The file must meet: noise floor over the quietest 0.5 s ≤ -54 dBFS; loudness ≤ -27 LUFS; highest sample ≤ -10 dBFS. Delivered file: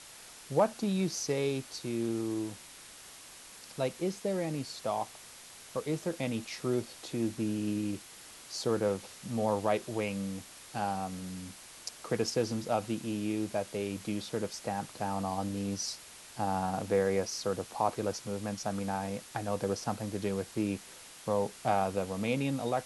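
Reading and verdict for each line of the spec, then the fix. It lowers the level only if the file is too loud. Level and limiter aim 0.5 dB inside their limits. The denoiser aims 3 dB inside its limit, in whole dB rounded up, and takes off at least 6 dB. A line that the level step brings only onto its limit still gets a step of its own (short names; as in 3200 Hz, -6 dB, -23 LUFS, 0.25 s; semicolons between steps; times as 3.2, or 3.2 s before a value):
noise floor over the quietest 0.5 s -51 dBFS: fail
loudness -34.0 LUFS: OK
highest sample -15.0 dBFS: OK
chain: denoiser 6 dB, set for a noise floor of -51 dBFS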